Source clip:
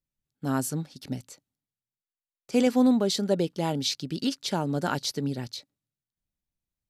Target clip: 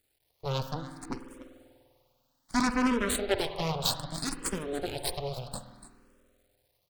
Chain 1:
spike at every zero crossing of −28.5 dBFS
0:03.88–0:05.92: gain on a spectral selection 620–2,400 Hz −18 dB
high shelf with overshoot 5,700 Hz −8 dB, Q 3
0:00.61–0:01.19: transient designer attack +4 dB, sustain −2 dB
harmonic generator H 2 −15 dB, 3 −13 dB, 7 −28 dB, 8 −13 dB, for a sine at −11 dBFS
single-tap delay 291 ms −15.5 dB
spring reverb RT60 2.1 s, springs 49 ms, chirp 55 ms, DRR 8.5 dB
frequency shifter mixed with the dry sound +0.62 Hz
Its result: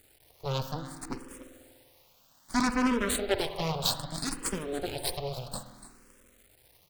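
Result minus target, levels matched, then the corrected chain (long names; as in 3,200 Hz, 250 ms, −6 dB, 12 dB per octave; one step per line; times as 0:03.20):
spike at every zero crossing: distortion +7 dB
spike at every zero crossing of −36 dBFS
0:03.88–0:05.92: gain on a spectral selection 620–2,400 Hz −18 dB
high shelf with overshoot 5,700 Hz −8 dB, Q 3
0:00.61–0:01.19: transient designer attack +4 dB, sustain −2 dB
harmonic generator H 2 −15 dB, 3 −13 dB, 7 −28 dB, 8 −13 dB, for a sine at −11 dBFS
single-tap delay 291 ms −15.5 dB
spring reverb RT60 2.1 s, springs 49 ms, chirp 55 ms, DRR 8.5 dB
frequency shifter mixed with the dry sound +0.62 Hz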